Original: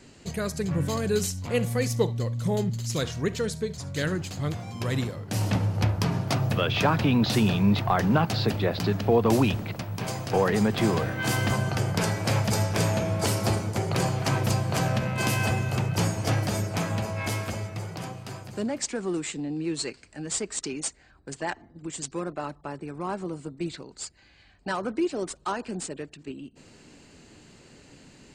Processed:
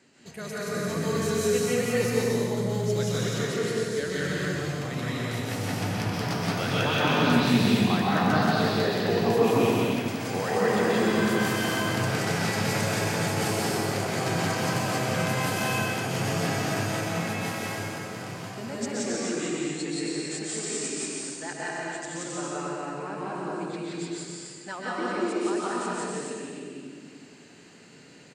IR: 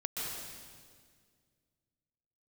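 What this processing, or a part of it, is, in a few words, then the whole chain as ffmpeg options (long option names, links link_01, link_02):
stadium PA: -filter_complex "[0:a]highpass=170,equalizer=frequency=1800:width_type=o:width=0.89:gain=4,aecho=1:1:174.9|268.2:1|0.708[link_01];[1:a]atrim=start_sample=2205[link_02];[link_01][link_02]afir=irnorm=-1:irlink=0,volume=-6.5dB"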